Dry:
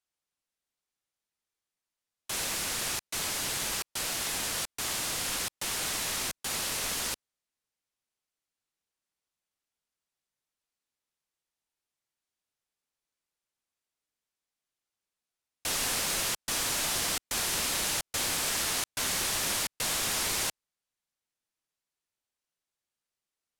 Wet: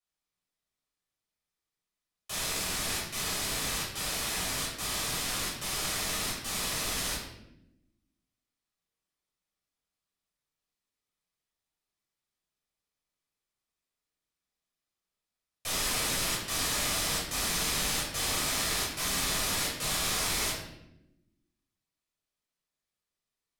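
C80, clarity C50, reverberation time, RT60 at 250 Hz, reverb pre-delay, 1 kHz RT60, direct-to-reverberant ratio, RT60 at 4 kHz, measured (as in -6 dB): 5.5 dB, 2.5 dB, 0.85 s, 1.4 s, 8 ms, 0.70 s, -6.0 dB, 0.65 s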